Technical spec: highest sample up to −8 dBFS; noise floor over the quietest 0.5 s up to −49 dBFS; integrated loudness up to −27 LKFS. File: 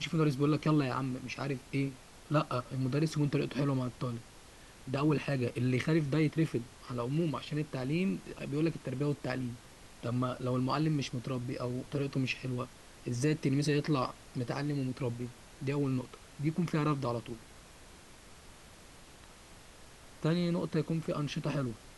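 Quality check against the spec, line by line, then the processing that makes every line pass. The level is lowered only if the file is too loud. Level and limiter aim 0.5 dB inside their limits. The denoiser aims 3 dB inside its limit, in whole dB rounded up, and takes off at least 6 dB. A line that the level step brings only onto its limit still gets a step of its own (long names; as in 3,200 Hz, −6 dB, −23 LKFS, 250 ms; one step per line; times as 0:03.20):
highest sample −17.5 dBFS: in spec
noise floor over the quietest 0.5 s −54 dBFS: in spec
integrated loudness −33.5 LKFS: in spec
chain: no processing needed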